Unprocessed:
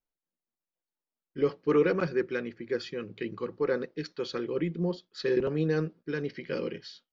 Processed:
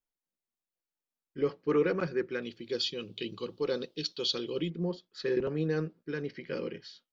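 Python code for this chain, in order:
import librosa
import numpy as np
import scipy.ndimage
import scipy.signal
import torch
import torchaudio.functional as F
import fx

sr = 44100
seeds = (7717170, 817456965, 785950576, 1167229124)

y = fx.high_shelf_res(x, sr, hz=2500.0, db=9.5, q=3.0, at=(2.42, 4.7))
y = y * librosa.db_to_amplitude(-3.0)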